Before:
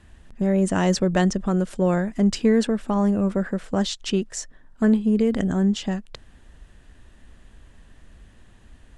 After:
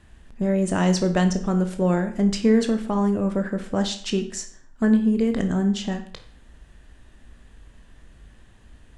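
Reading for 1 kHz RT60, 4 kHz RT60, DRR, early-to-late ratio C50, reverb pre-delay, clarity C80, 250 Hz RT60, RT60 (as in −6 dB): 0.50 s, 0.50 s, 6.0 dB, 11.0 dB, 17 ms, 14.5 dB, 0.50 s, 0.50 s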